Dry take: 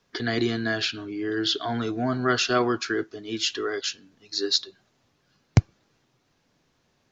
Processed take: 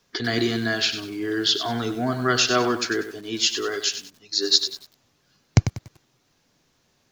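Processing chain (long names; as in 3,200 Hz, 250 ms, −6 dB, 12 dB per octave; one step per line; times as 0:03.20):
high-shelf EQ 5,000 Hz +9.5 dB
feedback echo at a low word length 96 ms, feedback 35%, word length 7 bits, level −9.5 dB
level +1 dB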